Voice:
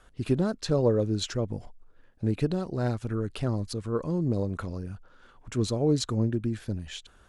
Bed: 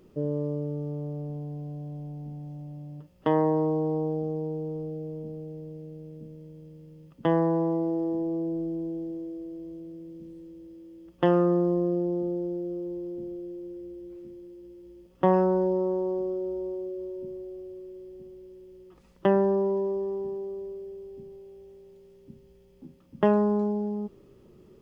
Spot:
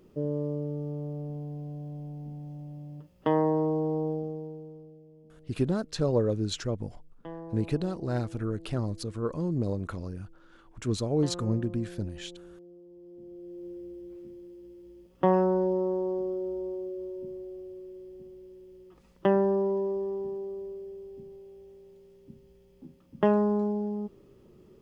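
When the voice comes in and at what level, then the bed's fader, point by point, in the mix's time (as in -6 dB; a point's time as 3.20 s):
5.30 s, -2.0 dB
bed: 4.11 s -1.5 dB
5.05 s -18 dB
12.88 s -18 dB
13.67 s -1.5 dB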